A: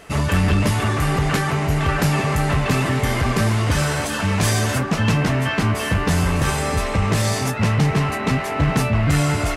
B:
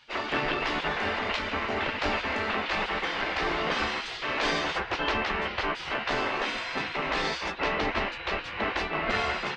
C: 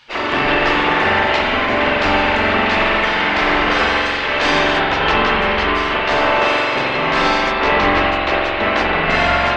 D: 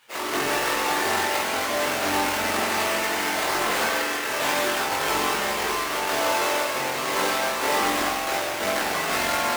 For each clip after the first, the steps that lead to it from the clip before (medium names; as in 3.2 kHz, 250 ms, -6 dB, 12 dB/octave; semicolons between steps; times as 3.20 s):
low-pass 4.2 kHz 24 dB/octave; spectral gate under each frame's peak -15 dB weak; trim -1.5 dB
spring tank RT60 2.3 s, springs 44 ms, chirp 50 ms, DRR -3.5 dB; trim +8.5 dB
square wave that keeps the level; chorus voices 4, 0.33 Hz, delay 21 ms, depth 1.9 ms; high-pass 360 Hz 6 dB/octave; trim -8.5 dB